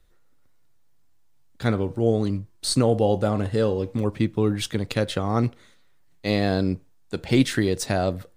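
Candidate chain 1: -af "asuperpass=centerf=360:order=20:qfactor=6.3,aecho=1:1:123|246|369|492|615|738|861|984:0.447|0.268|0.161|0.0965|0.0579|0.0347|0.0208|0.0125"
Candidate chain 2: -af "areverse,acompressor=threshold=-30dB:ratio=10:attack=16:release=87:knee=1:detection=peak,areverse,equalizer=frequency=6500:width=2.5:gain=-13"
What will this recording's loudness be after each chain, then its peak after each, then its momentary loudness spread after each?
−34.5, −33.0 LKFS; −15.5, −14.0 dBFS; 13, 4 LU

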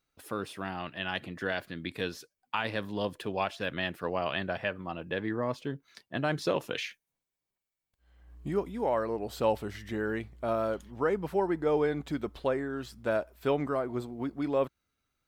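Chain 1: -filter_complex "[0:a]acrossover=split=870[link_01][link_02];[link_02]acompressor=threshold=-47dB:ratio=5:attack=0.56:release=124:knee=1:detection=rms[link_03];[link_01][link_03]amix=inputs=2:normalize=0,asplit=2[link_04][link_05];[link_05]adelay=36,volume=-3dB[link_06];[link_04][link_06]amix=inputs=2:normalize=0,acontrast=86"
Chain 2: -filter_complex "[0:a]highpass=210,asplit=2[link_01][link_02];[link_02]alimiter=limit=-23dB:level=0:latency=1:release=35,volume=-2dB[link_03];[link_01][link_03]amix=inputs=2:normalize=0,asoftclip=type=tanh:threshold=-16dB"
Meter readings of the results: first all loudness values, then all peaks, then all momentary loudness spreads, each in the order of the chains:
−25.5, −30.0 LKFS; −7.5, −17.0 dBFS; 10, 7 LU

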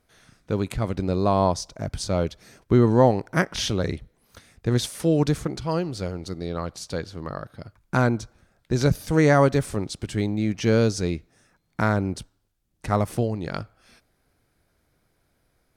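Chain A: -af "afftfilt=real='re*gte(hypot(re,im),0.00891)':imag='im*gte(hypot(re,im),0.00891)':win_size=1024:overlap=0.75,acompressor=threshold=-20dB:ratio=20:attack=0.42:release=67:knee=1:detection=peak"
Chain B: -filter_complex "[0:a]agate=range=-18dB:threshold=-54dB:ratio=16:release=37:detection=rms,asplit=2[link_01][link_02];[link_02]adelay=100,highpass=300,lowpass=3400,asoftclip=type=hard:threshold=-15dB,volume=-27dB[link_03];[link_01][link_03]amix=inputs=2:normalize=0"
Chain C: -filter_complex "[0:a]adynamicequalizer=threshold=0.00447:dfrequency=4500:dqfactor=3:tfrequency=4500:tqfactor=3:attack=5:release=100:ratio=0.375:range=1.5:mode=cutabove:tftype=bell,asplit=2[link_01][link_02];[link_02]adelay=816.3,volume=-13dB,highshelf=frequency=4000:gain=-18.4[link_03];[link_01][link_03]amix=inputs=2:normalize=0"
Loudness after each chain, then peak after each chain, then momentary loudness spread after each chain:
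−30.0, −24.0, −24.0 LKFS; −15.5, −5.0, −5.0 dBFS; 9, 14, 18 LU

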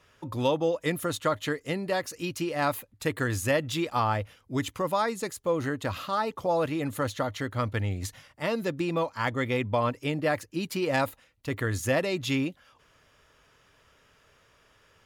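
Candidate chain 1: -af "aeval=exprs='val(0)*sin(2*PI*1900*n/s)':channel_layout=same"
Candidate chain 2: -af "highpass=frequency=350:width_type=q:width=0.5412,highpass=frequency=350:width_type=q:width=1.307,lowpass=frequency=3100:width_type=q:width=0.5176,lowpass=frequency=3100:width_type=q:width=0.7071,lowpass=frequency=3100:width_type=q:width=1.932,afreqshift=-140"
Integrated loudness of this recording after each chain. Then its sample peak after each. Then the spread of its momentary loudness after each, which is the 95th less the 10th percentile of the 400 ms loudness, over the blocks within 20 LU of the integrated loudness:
−30.0, −31.0 LKFS; −13.0, −14.0 dBFS; 6, 8 LU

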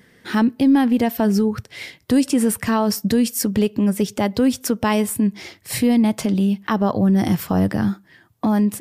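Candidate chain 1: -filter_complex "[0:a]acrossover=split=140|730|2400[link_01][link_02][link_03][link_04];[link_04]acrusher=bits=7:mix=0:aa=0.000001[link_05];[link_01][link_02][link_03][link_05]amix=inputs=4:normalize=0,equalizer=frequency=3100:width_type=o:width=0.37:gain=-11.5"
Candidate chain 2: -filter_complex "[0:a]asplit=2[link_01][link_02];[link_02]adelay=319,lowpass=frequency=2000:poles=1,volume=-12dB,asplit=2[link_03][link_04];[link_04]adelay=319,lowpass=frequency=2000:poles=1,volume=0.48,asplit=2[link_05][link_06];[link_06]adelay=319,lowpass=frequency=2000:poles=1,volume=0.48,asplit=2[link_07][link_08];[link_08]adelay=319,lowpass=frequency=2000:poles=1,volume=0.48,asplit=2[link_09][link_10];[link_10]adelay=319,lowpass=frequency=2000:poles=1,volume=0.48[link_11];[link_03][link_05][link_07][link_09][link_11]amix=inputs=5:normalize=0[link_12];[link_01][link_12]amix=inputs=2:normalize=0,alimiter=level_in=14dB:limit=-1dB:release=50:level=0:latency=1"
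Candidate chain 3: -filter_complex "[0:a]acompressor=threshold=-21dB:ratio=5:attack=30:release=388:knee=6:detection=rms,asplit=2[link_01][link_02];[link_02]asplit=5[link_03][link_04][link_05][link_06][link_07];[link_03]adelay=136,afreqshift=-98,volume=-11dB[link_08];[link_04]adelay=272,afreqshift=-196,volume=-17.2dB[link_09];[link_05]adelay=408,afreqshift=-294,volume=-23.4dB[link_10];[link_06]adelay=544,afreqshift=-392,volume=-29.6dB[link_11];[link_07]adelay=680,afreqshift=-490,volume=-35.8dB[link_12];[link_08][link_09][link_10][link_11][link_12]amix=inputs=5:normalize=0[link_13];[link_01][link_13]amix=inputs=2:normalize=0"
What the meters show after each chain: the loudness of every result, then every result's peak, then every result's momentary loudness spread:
−19.5, −9.5, −25.0 LKFS; −5.5, −1.0, −11.5 dBFS; 7, 5, 5 LU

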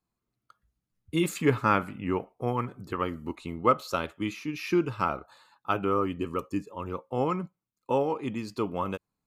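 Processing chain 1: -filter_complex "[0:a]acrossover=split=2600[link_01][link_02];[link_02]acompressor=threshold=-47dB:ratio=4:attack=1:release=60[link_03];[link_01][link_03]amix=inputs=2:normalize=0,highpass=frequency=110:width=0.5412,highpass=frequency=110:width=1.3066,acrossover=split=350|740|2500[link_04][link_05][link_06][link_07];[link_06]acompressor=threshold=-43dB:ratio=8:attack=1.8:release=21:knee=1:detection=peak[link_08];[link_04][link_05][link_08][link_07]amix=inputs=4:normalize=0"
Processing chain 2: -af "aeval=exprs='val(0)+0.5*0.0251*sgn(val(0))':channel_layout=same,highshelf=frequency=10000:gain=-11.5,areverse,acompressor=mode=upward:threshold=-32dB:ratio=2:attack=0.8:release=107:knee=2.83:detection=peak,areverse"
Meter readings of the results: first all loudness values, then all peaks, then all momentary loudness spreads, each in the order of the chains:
−32.0, −28.5 LKFS; −11.5, −8.0 dBFS; 9, 11 LU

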